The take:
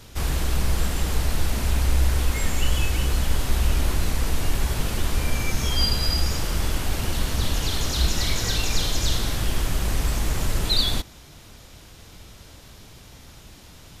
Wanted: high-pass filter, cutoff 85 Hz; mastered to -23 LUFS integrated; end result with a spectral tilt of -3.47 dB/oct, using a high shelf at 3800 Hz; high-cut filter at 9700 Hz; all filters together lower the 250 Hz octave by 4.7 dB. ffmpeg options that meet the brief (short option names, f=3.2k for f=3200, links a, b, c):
-af "highpass=85,lowpass=9.7k,equalizer=f=250:t=o:g=-6.5,highshelf=f=3.8k:g=-5,volume=6.5dB"